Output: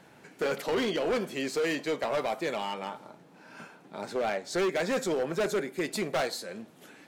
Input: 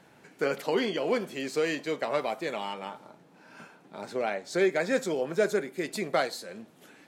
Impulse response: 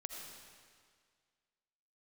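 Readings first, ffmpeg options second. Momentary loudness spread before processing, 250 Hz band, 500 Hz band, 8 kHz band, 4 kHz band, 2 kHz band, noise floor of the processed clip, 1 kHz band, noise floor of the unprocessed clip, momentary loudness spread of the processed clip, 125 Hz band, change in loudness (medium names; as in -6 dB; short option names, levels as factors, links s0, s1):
13 LU, -0.5 dB, -1.0 dB, +2.0 dB, +1.0 dB, -1.0 dB, -56 dBFS, 0.0 dB, -58 dBFS, 16 LU, +0.5 dB, -1.0 dB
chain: -af "volume=21.1,asoftclip=hard,volume=0.0473,volume=1.26"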